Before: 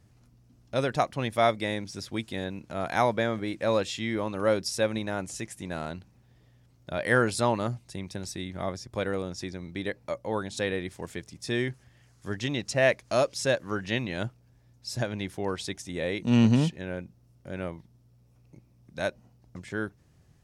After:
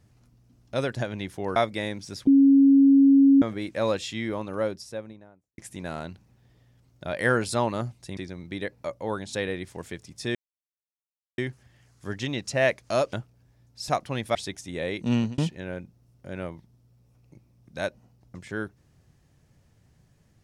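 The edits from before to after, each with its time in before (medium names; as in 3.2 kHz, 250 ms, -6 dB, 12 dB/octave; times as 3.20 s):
0.95–1.42 s: swap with 14.95–15.56 s
2.13–3.28 s: bleep 275 Hz -12.5 dBFS
3.98–5.44 s: studio fade out
8.03–9.41 s: delete
11.59 s: insert silence 1.03 s
13.34–14.20 s: delete
16.28–16.59 s: fade out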